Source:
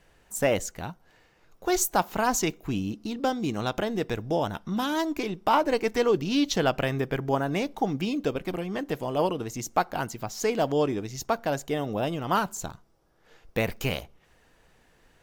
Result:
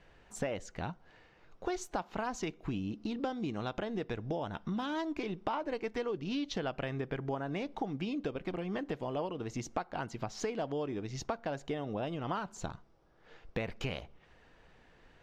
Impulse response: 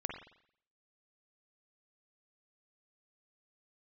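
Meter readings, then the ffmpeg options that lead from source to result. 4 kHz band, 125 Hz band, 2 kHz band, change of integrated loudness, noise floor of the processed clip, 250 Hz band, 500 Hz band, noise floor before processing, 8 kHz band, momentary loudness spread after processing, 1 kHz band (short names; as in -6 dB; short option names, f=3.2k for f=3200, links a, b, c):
-11.0 dB, -7.5 dB, -10.0 dB, -10.0 dB, -63 dBFS, -8.5 dB, -10.0 dB, -62 dBFS, -16.0 dB, 5 LU, -11.0 dB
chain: -af "lowpass=4.1k,acompressor=threshold=-33dB:ratio=6"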